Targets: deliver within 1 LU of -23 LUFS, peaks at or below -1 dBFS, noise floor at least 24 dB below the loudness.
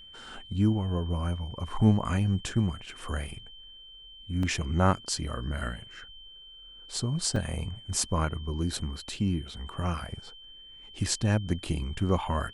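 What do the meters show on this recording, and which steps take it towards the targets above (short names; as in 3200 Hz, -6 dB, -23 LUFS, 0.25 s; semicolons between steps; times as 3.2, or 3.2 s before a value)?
dropouts 2; longest dropout 3.0 ms; steady tone 3100 Hz; tone level -47 dBFS; loudness -30.0 LUFS; peak -8.5 dBFS; loudness target -23.0 LUFS
-> interpolate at 4.43/7.36, 3 ms; notch 3100 Hz, Q 30; gain +7 dB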